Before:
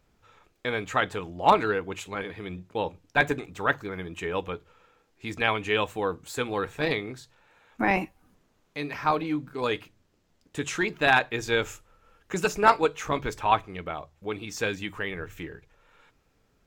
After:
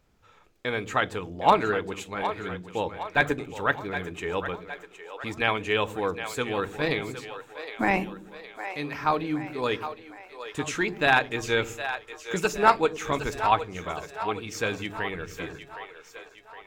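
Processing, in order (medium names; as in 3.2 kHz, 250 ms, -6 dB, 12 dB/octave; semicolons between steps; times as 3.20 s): two-band feedback delay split 410 Hz, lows 94 ms, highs 764 ms, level -10.5 dB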